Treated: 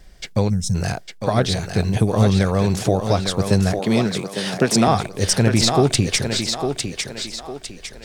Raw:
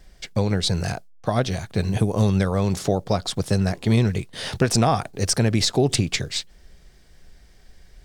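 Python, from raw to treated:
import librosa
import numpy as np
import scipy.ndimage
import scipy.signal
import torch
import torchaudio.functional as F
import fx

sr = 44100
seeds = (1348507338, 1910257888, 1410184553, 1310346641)

y = fx.echo_thinned(x, sr, ms=854, feedback_pct=41, hz=230.0, wet_db=-5)
y = fx.spec_box(y, sr, start_s=0.49, length_s=0.26, low_hz=250.0, high_hz=5100.0, gain_db=-20)
y = fx.highpass(y, sr, hz=150.0, slope=24, at=(3.79, 4.88))
y = y * librosa.db_to_amplitude(3.0)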